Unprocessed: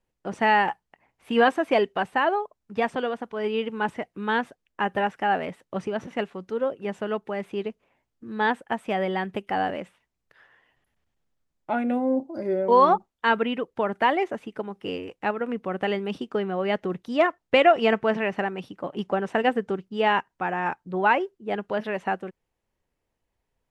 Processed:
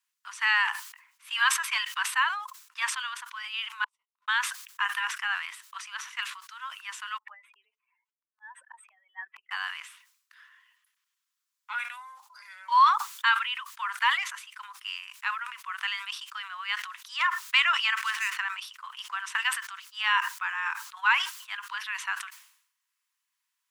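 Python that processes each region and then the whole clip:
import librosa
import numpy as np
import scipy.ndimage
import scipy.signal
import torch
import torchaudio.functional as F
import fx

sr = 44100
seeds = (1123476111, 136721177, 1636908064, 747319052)

y = fx.chain(x, sr, fx.cheby2_lowpass(hz=650.0, order=4, stop_db=80),
    fx.doubler(ms=20.0, db=-5.0),
    fx.sustainer(db_per_s=63.0), at=(3.84, 4.28))
y = fx.chain(y, sr, fx.spec_expand(power=2.5),
    fx.dynamic_eq(hz=430.0, q=4.9, threshold_db=-42.0, ratio=4.0, max_db=3),
    fx.auto_swell(attack_ms=585.0), at=(7.18, 9.51))
y = fx.chain(y, sr, fx.median_filter(points=9),
    fx.highpass(hz=970.0, slope=24),
    fx.band_squash(depth_pct=40), at=(17.97, 18.37))
y = scipy.signal.sosfilt(scipy.signal.cheby1(6, 1.0, 1000.0, 'highpass', fs=sr, output='sos'), y)
y = fx.high_shelf(y, sr, hz=3600.0, db=10.5)
y = fx.sustainer(y, sr, db_per_s=86.0)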